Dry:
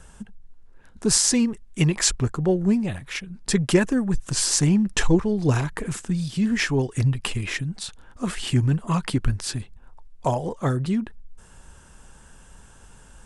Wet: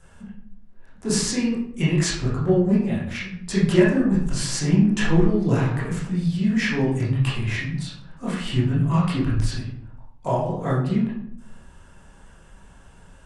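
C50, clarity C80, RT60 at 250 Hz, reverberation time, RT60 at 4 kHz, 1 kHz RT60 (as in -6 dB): 2.0 dB, 6.5 dB, 0.90 s, 0.70 s, 0.45 s, 0.65 s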